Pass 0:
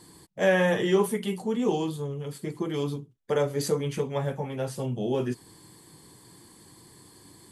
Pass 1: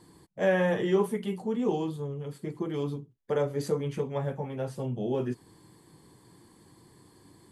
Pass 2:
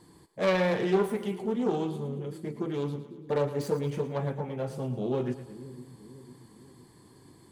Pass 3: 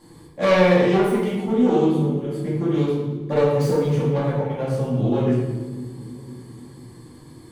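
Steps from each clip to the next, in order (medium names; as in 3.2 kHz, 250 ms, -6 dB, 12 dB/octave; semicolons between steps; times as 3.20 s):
treble shelf 2.5 kHz -9 dB; trim -2 dB
self-modulated delay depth 0.23 ms; two-band feedback delay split 380 Hz, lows 503 ms, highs 112 ms, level -12.5 dB
simulated room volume 280 m³, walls mixed, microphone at 2.3 m; trim +2 dB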